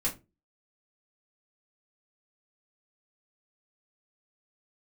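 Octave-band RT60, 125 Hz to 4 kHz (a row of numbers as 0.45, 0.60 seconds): 0.40, 0.35, 0.30, 0.20, 0.20, 0.15 seconds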